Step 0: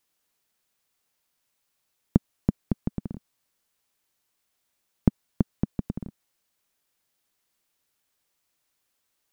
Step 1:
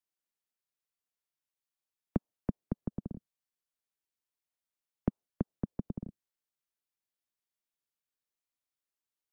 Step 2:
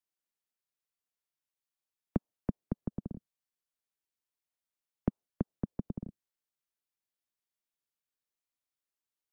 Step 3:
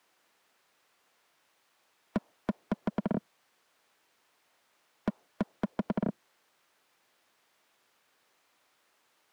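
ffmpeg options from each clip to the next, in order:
-filter_complex "[0:a]acrossover=split=220|490[a][b][c];[a]acompressor=threshold=-28dB:ratio=6[d];[d][b][c]amix=inputs=3:normalize=0,afftdn=nr=13:nf=-52,volume=-5dB"
-af anull
-filter_complex "[0:a]asplit=2[a][b];[b]highpass=f=720:p=1,volume=44dB,asoftclip=type=tanh:threshold=-14dB[c];[a][c]amix=inputs=2:normalize=0,lowpass=f=1.2k:p=1,volume=-6dB,volume=-4.5dB"

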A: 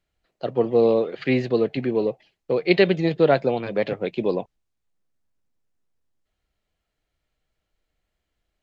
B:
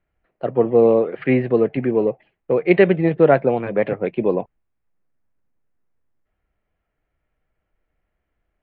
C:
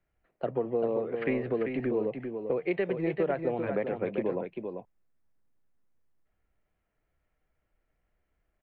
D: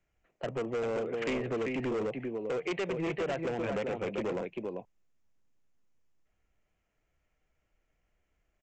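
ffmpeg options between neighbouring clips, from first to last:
-af "lowpass=f=2.3k:w=0.5412,lowpass=f=2.3k:w=1.3066,volume=4dB"
-filter_complex "[0:a]acrossover=split=190[a][b];[a]asoftclip=type=hard:threshold=-32.5dB[c];[c][b]amix=inputs=2:normalize=0,acompressor=threshold=-23dB:ratio=5,aecho=1:1:392:0.473,volume=-4dB"
-af "aresample=16000,asoftclip=type=hard:threshold=-29dB,aresample=44100,aexciter=amount=1.7:drive=4.5:freq=2.3k"

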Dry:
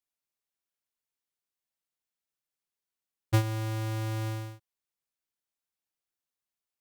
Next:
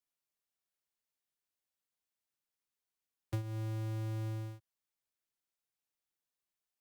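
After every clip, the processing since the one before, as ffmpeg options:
-filter_complex "[0:a]acrossover=split=130|500[a][b][c];[a]acompressor=threshold=-37dB:ratio=4[d];[b]acompressor=threshold=-40dB:ratio=4[e];[c]acompressor=threshold=-50dB:ratio=4[f];[d][e][f]amix=inputs=3:normalize=0,volume=-2dB"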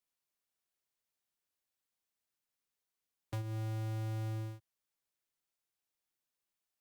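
-af "volume=34.5dB,asoftclip=hard,volume=-34.5dB,volume=1dB"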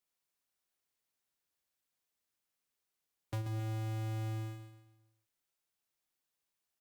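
-af "aecho=1:1:134|268|402|536|670:0.422|0.173|0.0709|0.0291|0.0119,volume=1dB"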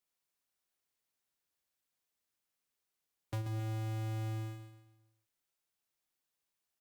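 -af anull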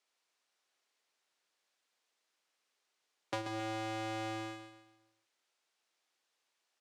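-af "highpass=380,lowpass=6.1k,volume=9.5dB"

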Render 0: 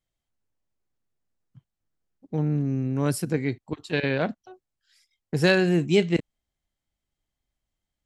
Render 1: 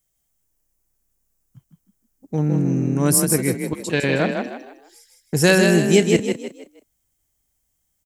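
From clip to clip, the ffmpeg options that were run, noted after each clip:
-filter_complex "[0:a]aexciter=amount=2.9:drive=8.6:freq=5.7k,asplit=5[a][b][c][d][e];[b]adelay=157,afreqshift=33,volume=-5dB[f];[c]adelay=314,afreqshift=66,volume=-14.1dB[g];[d]adelay=471,afreqshift=99,volume=-23.2dB[h];[e]adelay=628,afreqshift=132,volume=-32.4dB[i];[a][f][g][h][i]amix=inputs=5:normalize=0,volume=4.5dB"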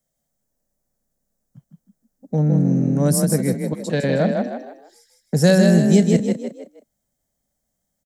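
-filter_complex "[0:a]acrossover=split=230|3000[a][b][c];[b]acompressor=threshold=-29dB:ratio=1.5[d];[a][d][c]amix=inputs=3:normalize=0,firequalizer=gain_entry='entry(100,0);entry(150,9);entry(220,13);entry(330,2);entry(570,14);entry(990,2);entry(1800,4);entry(2600,-6);entry(3800,3);entry(11000,-2)':delay=0.05:min_phase=1,volume=-5dB"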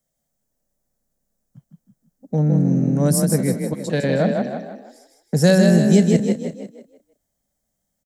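-af "aecho=1:1:337:0.168"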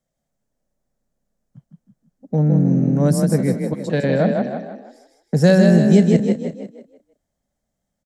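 -af "aemphasis=mode=reproduction:type=50kf,volume=1.5dB"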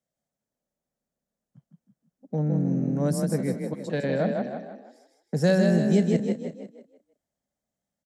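-af "highpass=f=140:p=1,volume=-7dB"

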